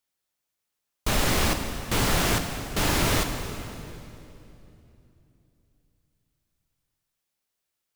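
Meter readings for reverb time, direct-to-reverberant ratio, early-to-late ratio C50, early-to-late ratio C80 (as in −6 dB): 3.0 s, 6.0 dB, 7.0 dB, 7.5 dB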